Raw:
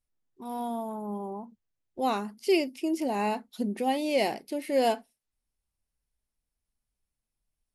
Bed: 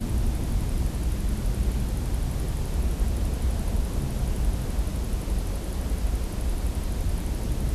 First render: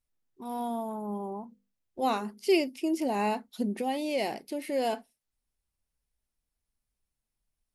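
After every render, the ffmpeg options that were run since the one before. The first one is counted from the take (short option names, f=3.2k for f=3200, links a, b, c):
-filter_complex "[0:a]asettb=1/sr,asplit=3[a][b][c];[a]atrim=end=1.424[d];[b]atrim=start=1.42:end=2.49,asetpts=PTS-STARTPTS,afade=t=in:d=0.004:c=qsin,afade=t=out:st=1.066:d=0.004:c=qsin,bandreject=f=50:t=h:w=6,bandreject=f=100:t=h:w=6,bandreject=f=150:t=h:w=6,bandreject=f=200:t=h:w=6,bandreject=f=250:t=h:w=6,bandreject=f=300:t=h:w=6,bandreject=f=350:t=h:w=6,bandreject=f=400:t=h:w=6,bandreject=f=450:t=h:w=6,bandreject=f=500:t=h:w=6[e];[c]atrim=start=2.486[f];[d][e]acrossfade=d=0.004:c1=hsin:c2=qsin[g];[g][f]acrossfade=d=0.004:c1=qsin:c2=hsin,asettb=1/sr,asplit=3[h][i][j];[h]atrim=end=3.814[k];[i]atrim=start=3.81:end=4.93,asetpts=PTS-STARTPTS,afade=t=in:d=0.004:c=qsin,afade=t=out:st=1.116:d=0.004:c=qsin,acompressor=threshold=-32dB:ratio=1.5:attack=3.2:release=140:knee=1:detection=peak[l];[j]atrim=start=4.926[m];[k][l]acrossfade=d=0.004:c1=hsin:c2=qsin[n];[n][m]acrossfade=d=0.004:c1=qsin:c2=hsin"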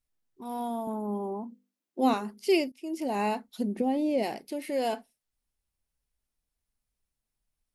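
-filter_complex "[0:a]asettb=1/sr,asplit=3[a][b][c];[a]atrim=end=0.874[d];[b]atrim=start=0.87:end=2.14,asetpts=PTS-STARTPTS,afade=t=in:d=0.004:c=qsin,afade=t=out:st=1.266:d=0.004:c=qsin,highpass=f=260:t=q:w=2.8[e];[c]atrim=start=2.136[f];[d][e]acrossfade=d=0.004:c1=hsin:c2=qsin[g];[g][f]acrossfade=d=0.004:c1=qsin:c2=hsin,asplit=3[h][i][j];[h]afade=t=out:st=3.76:d=0.02[k];[i]tiltshelf=f=690:g=9.5,afade=t=in:st=3.76:d=0.02,afade=t=out:st=4.22:d=0.02[l];[j]afade=t=in:st=4.22:d=0.02[m];[k][l][m]amix=inputs=3:normalize=0,asplit=2[n][o];[n]atrim=end=2.72,asetpts=PTS-STARTPTS,afade=t=out:st=2.716:d=0.004:c=hsin:silence=0.125893[p];[o]atrim=start=2.72,asetpts=PTS-STARTPTS,afade=t=in:d=0.43:silence=0.125893[q];[p][q]concat=n=2:v=0:a=1"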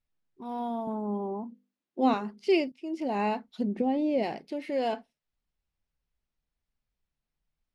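-af "lowpass=4.1k,equalizer=f=160:w=4.9:g=6"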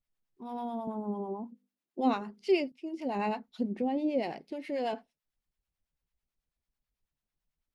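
-filter_complex "[0:a]acrossover=split=670[a][b];[a]aeval=exprs='val(0)*(1-0.7/2+0.7/2*cos(2*PI*9.1*n/s))':c=same[c];[b]aeval=exprs='val(0)*(1-0.7/2-0.7/2*cos(2*PI*9.1*n/s))':c=same[d];[c][d]amix=inputs=2:normalize=0"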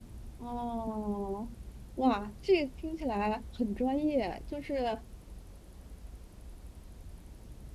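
-filter_complex "[1:a]volume=-21.5dB[a];[0:a][a]amix=inputs=2:normalize=0"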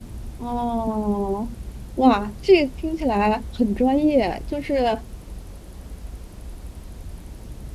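-af "volume=12dB"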